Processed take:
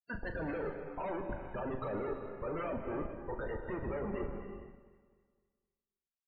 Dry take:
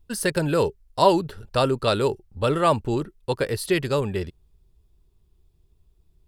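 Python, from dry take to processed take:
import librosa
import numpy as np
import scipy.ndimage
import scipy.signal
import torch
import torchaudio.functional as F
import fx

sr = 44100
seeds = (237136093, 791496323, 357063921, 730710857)

p1 = scipy.signal.sosfilt(scipy.signal.butter(4, 2100.0, 'lowpass', fs=sr, output='sos'), x)
p2 = fx.env_lowpass_down(p1, sr, base_hz=630.0, full_db=-17.0)
p3 = scipy.signal.sosfilt(scipy.signal.butter(2, 66.0, 'highpass', fs=sr, output='sos'), p2)
p4 = np.diff(p3, prepend=0.0)
p5 = fx.rider(p4, sr, range_db=10, speed_s=2.0)
p6 = p4 + (p5 * 10.0 ** (-0.5 / 20.0))
p7 = fx.schmitt(p6, sr, flips_db=-50.5)
p8 = fx.spec_topn(p7, sr, count=32)
p9 = fx.doubler(p8, sr, ms=38.0, db=-9.5)
p10 = p9 + fx.echo_alternate(p9, sr, ms=128, hz=890.0, feedback_pct=61, wet_db=-11, dry=0)
p11 = fx.rev_gated(p10, sr, seeds[0], gate_ms=470, shape='flat', drr_db=6.0)
y = p11 * 10.0 ** (6.0 / 20.0)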